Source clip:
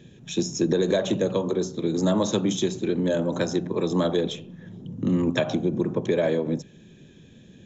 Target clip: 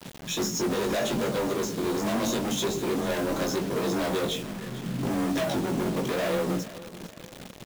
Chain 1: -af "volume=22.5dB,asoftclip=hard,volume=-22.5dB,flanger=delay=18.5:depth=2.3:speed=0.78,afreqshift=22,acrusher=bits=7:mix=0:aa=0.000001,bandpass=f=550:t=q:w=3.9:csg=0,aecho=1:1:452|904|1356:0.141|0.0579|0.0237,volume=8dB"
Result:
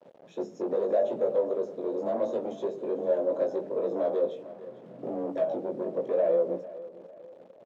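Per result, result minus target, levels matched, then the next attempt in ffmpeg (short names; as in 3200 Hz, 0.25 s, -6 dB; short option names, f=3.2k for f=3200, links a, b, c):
500 Hz band +4.0 dB; overloaded stage: distortion -5 dB
-af "volume=22.5dB,asoftclip=hard,volume=-22.5dB,flanger=delay=18.5:depth=2.3:speed=0.78,afreqshift=22,acrusher=bits=7:mix=0:aa=0.000001,aecho=1:1:452|904|1356:0.141|0.0579|0.0237,volume=8dB"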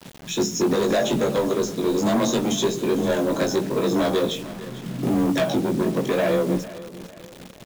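overloaded stage: distortion -5 dB
-af "volume=31dB,asoftclip=hard,volume=-31dB,flanger=delay=18.5:depth=2.3:speed=0.78,afreqshift=22,acrusher=bits=7:mix=0:aa=0.000001,aecho=1:1:452|904|1356:0.141|0.0579|0.0237,volume=8dB"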